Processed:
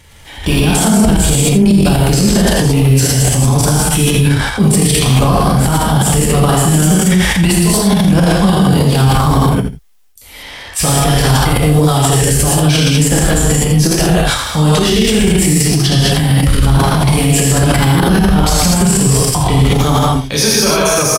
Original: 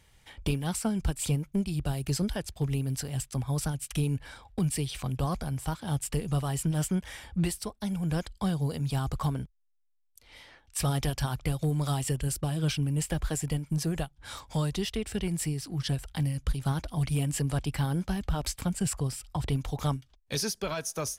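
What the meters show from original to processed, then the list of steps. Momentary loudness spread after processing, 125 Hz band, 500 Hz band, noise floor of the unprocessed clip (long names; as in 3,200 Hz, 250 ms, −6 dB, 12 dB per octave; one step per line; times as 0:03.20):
2 LU, +18.5 dB, +22.0 dB, −66 dBFS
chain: reverb whose tail is shaped and stops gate 260 ms flat, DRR −6.5 dB
transient designer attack −3 dB, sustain +10 dB
on a send: single-tap delay 83 ms −11.5 dB
on the sum: boost into a limiter +16 dB
level −1 dB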